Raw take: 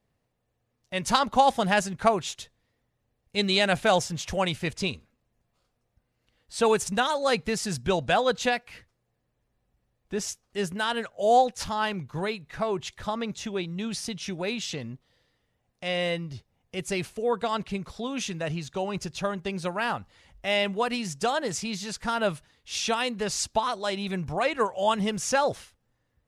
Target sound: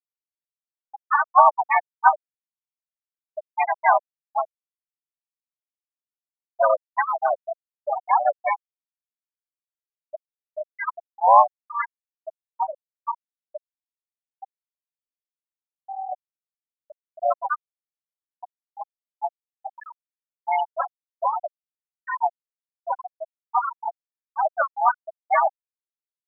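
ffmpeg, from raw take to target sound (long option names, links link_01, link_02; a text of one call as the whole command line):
ffmpeg -i in.wav -filter_complex "[0:a]asplit=4[link_01][link_02][link_03][link_04];[link_02]asetrate=29433,aresample=44100,atempo=1.49831,volume=-10dB[link_05];[link_03]asetrate=55563,aresample=44100,atempo=0.793701,volume=0dB[link_06];[link_04]asetrate=58866,aresample=44100,atempo=0.749154,volume=-10dB[link_07];[link_01][link_05][link_06][link_07]amix=inputs=4:normalize=0,highpass=frequency=500:width_type=q:width=0.5412,highpass=frequency=500:width_type=q:width=1.307,lowpass=frequency=3200:width_type=q:width=0.5176,lowpass=frequency=3200:width_type=q:width=0.7071,lowpass=frequency=3200:width_type=q:width=1.932,afreqshift=97,afftfilt=real='re*gte(hypot(re,im),0.398)':imag='im*gte(hypot(re,im),0.398)':win_size=1024:overlap=0.75,volume=3.5dB" out.wav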